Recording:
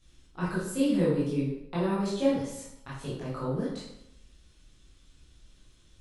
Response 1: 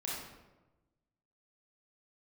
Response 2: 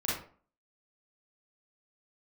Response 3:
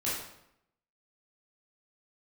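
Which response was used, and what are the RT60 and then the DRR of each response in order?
3; 1.1 s, 0.45 s, 0.80 s; -5.5 dB, -8.0 dB, -9.0 dB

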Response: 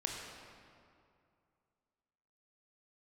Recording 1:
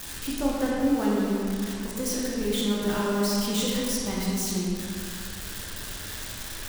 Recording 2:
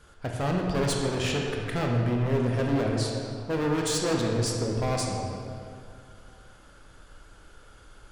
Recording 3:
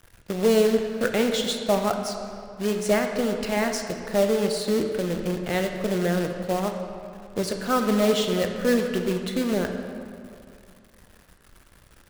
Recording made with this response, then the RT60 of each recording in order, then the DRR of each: 2; 2.4 s, 2.4 s, 2.4 s; -5.5 dB, -0.5 dB, 4.5 dB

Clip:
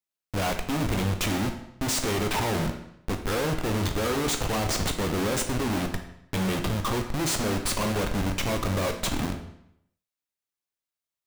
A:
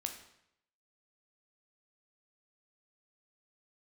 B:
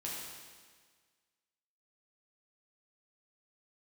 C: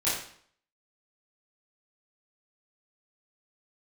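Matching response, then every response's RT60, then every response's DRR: A; 0.75 s, 1.6 s, 0.60 s; 4.5 dB, -5.5 dB, -11.5 dB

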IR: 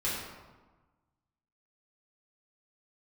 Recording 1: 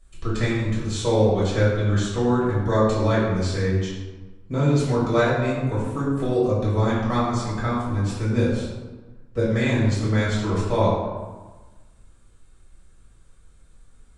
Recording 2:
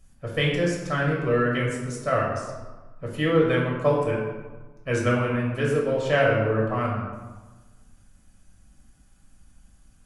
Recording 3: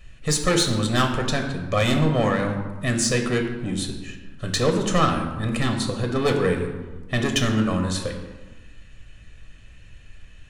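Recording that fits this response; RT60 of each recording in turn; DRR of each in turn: 1; 1.3 s, 1.3 s, 1.3 s; -9.0 dB, -3.5 dB, 3.0 dB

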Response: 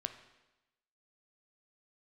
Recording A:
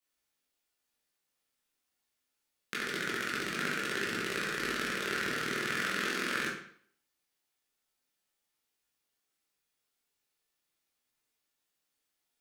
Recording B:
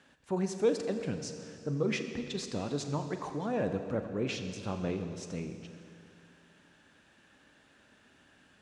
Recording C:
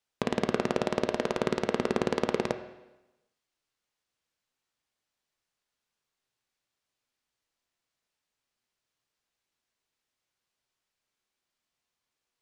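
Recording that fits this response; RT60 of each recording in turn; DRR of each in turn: C; 0.55 s, 2.6 s, 1.0 s; -7.0 dB, 6.5 dB, 7.5 dB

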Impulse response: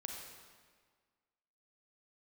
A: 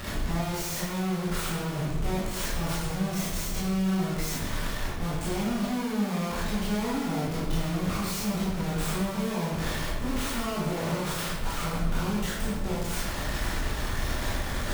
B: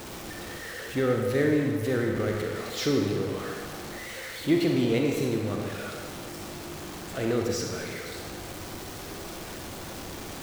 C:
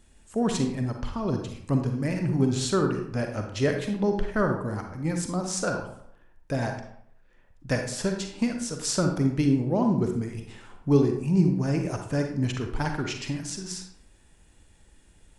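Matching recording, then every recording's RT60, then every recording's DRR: B; 1.1 s, 1.7 s, 0.65 s; -8.0 dB, 0.5 dB, 3.5 dB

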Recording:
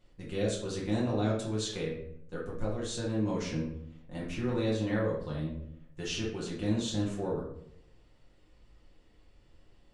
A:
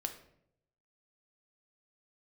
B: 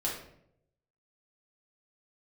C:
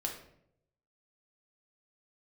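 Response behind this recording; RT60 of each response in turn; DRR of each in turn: B; 0.70 s, 0.70 s, 0.70 s; 5.0 dB, -5.0 dB, 0.0 dB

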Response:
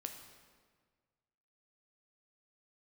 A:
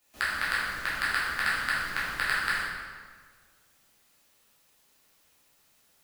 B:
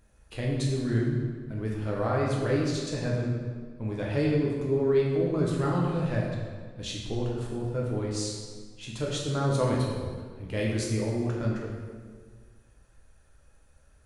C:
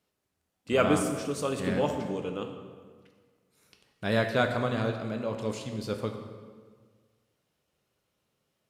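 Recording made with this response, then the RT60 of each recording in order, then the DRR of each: C; 1.6 s, 1.6 s, 1.6 s; -9.5 dB, -3.5 dB, 4.0 dB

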